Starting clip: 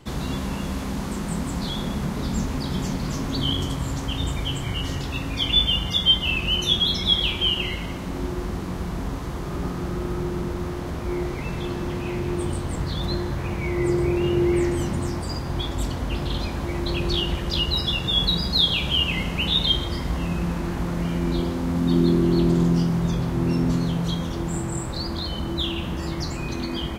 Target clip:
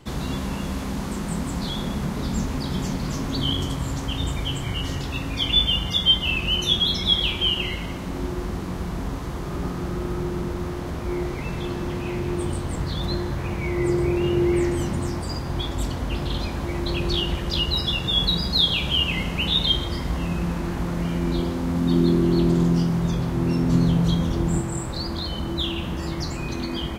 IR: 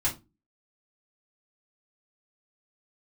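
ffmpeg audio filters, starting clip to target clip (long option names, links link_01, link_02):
-filter_complex "[0:a]asettb=1/sr,asplit=3[link_01][link_02][link_03];[link_01]atrim=end=23.724[link_04];[link_02]atrim=start=23.72:end=24.61,asetpts=PTS-STARTPTS,afade=type=in:duration=0.004:curve=qsin,afade=type=out:start_time=0.886:duration=0.004:curve=qsin,lowshelf=frequency=390:gain=6[link_05];[link_03]atrim=start=24.606[link_06];[link_04][link_05]acrossfade=duration=0.004:curve1=hsin:curve2=qsin[link_07];[link_07][link_06]acrossfade=duration=0.004:curve1=qsin:curve2=hsin"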